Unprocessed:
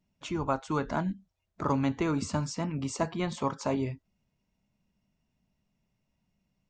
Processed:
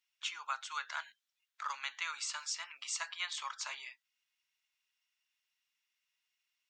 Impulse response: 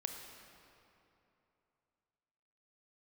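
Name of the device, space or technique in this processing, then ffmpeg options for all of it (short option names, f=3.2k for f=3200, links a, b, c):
headphones lying on a table: -af "highpass=f=1.4k:w=0.5412,highpass=f=1.4k:w=1.3066,equalizer=f=3.4k:t=o:w=0.6:g=4.5,volume=1.5dB"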